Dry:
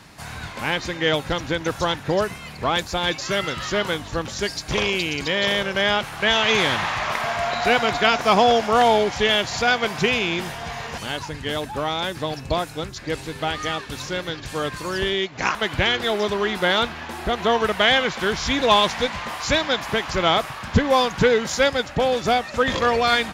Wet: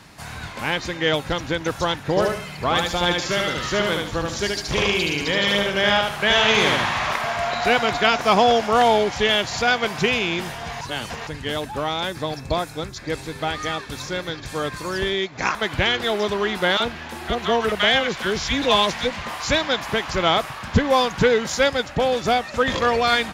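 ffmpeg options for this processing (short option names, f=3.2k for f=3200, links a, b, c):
-filter_complex "[0:a]asettb=1/sr,asplit=3[a][b][c];[a]atrim=end=2.094[d];[b]atrim=start=2.09:end=7.16,asetpts=PTS-STARTPTS,afade=t=in:d=0.004:c=qsin,afade=t=out:st=5.066:d=0.004:c=qsin,aecho=1:1:74|148|222|296:0.708|0.227|0.0725|0.0232,atrim=end_sample=223587[e];[c]atrim=start=7.156[f];[d][e]acrossfade=d=0.004:c1=hsin:c2=qsin[g];[g][f]acrossfade=d=0.004:c1=qsin:c2=hsin,asettb=1/sr,asplit=3[h][i][j];[h]atrim=end=12.084[k];[i]atrim=start=12.08:end=15.73,asetpts=PTS-STARTPTS,afade=t=in:d=0.004:c=qsin,afade=t=out:st=3.646:d=0.004:c=qsin,bandreject=f=2.9k:w=9.9[l];[j]atrim=start=15.726[m];[k][l]acrossfade=d=0.004:c1=hsin:c2=qsin[n];[n][m]acrossfade=d=0.004:c1=qsin:c2=hsin,asettb=1/sr,asplit=3[o][p][q];[o]atrim=end=16.774[r];[p]atrim=start=16.77:end=19.24,asetpts=PTS-STARTPTS,afade=t=in:d=0.004:c=qsin,afade=t=out:st=2.466:d=0.004:c=qsin,acrossover=split=980[s][t];[s]adelay=30[u];[u][t]amix=inputs=2:normalize=0,atrim=end_sample=108927[v];[q]atrim=start=19.236[w];[r][v]acrossfade=d=0.004:c1=hsin:c2=qsin[x];[x][w]acrossfade=d=0.004:c1=qsin:c2=hsin,asplit=3[y][z][aa];[y]atrim=end=10.812[ab];[z]atrim=start=10.808:end=11.272,asetpts=PTS-STARTPTS,areverse[ac];[aa]atrim=start=11.268[ad];[ab][ac]acrossfade=d=0.004:c1=hsin:c2=hsin[ae];[ae][ad]acrossfade=d=0.004:c1=hsin:c2=hsin"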